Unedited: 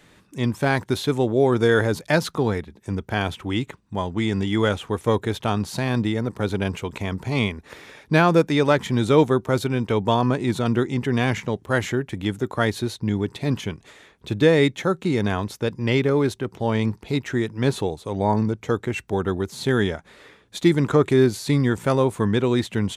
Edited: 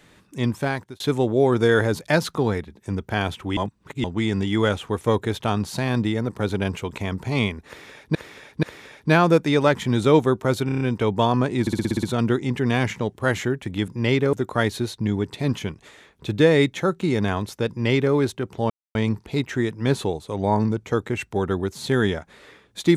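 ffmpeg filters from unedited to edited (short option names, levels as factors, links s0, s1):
-filter_complex "[0:a]asplit=21[s0][s1][s2][s3][s4][s5][s6][s7][s8][s9][s10][s11][s12][s13][s14][s15][s16][s17][s18][s19][s20];[s0]atrim=end=1,asetpts=PTS-STARTPTS,afade=t=out:st=0.51:d=0.49[s21];[s1]atrim=start=1:end=3.572,asetpts=PTS-STARTPTS,afade=t=in:d=0.004:c=hsin[s22];[s2]atrim=start=3.568:end=4.042,asetpts=PTS-STARTPTS,areverse[s23];[s3]atrim=start=4.038:end=8.152[s24];[s4]atrim=start=7.668:end=8.152[s25];[s5]atrim=start=7.668:end=9.732[s26];[s6]atrim=start=9.698:end=9.732[s27];[s7]atrim=start=9.698:end=9.732[s28];[s8]atrim=start=9.698:end=9.732[s29];[s9]atrim=start=9.698:end=9.732[s30];[s10]atrim=start=9.698:end=10.562[s31];[s11]atrim=start=10.498:end=10.562[s32];[s12]atrim=start=10.498:end=10.562[s33];[s13]atrim=start=10.498:end=10.562[s34];[s14]atrim=start=10.498:end=10.562[s35];[s15]atrim=start=10.498:end=10.562[s36];[s16]atrim=start=10.498:end=10.562[s37];[s17]atrim=start=10.498:end=12.352[s38];[s18]atrim=start=15.708:end=16.162[s39];[s19]atrim=start=12.348:end=16.72,asetpts=PTS-STARTPTS,afade=t=out:st=4.368:d=0.004:c=hsin,apad=pad_dur=0.25[s40];[s20]atrim=start=16.72,asetpts=PTS-STARTPTS,afade=t=in:d=0.004:c=hsin[s41];[s21][s22]concat=n=2:v=0:a=1[s42];[s42][s23]acrossfade=d=0.004:c1=hsin:c2=hsin[s43];[s43][s24]acrossfade=d=0.004:c1=hsin:c2=hsin[s44];[s44][s25]acrossfade=d=0.004:c1=hsin:c2=hsin[s45];[s45][s26]acrossfade=d=0.004:c1=hsin:c2=hsin[s46];[s46][s27]acrossfade=d=0.004:c1=hsin:c2=hsin[s47];[s47][s28]acrossfade=d=0.004:c1=hsin:c2=hsin[s48];[s48][s29]acrossfade=d=0.004:c1=hsin:c2=hsin[s49];[s49][s30]acrossfade=d=0.004:c1=hsin:c2=hsin[s50];[s50][s31]acrossfade=d=0.004:c1=hsin:c2=hsin[s51];[s51][s32]acrossfade=d=0.004:c1=hsin:c2=hsin[s52];[s52][s33]acrossfade=d=0.004:c1=hsin:c2=hsin[s53];[s53][s34]acrossfade=d=0.004:c1=hsin:c2=hsin[s54];[s54][s35]acrossfade=d=0.004:c1=hsin:c2=hsin[s55];[s55][s36]acrossfade=d=0.004:c1=hsin:c2=hsin[s56];[s56][s37]acrossfade=d=0.004:c1=hsin:c2=hsin[s57];[s57][s38]acrossfade=d=0.004:c1=hsin:c2=hsin[s58];[s58][s39]acrossfade=d=0.004:c1=hsin:c2=hsin[s59];[s40][s41]concat=n=2:v=0:a=1[s60];[s59][s60]acrossfade=d=0.004:c1=hsin:c2=hsin"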